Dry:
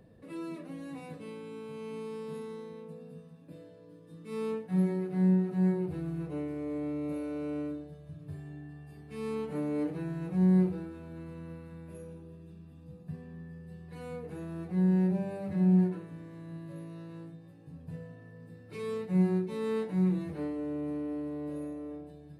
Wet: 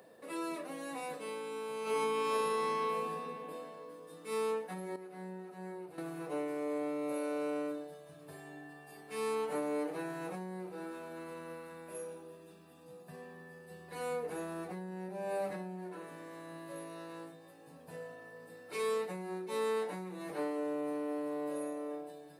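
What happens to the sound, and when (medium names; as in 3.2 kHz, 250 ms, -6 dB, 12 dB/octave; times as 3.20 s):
1.82–3.10 s: reverb throw, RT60 2.9 s, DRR -11.5 dB
4.96–5.98 s: gain -11.5 dB
13.70–15.09 s: bass shelf 150 Hz +8.5 dB
whole clip: peaking EQ 2.6 kHz -8 dB 2.8 oct; compression 12:1, threshold -33 dBFS; high-pass 750 Hz 12 dB/octave; trim +14 dB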